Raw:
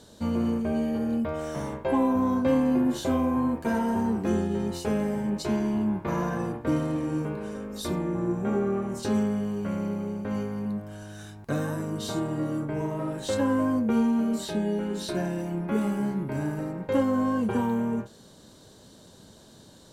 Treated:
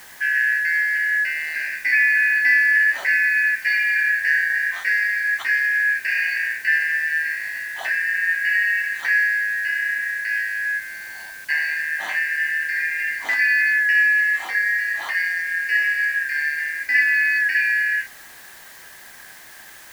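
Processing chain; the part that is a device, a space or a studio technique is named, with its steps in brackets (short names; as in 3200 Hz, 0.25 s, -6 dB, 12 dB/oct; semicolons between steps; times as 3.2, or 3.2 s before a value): split-band scrambled radio (four-band scrambler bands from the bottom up 3142; BPF 380–3400 Hz; white noise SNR 24 dB); gain +6.5 dB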